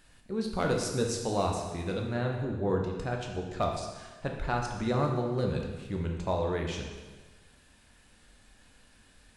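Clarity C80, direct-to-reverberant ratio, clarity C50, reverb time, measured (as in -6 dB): 5.5 dB, 1.0 dB, 3.5 dB, 1.3 s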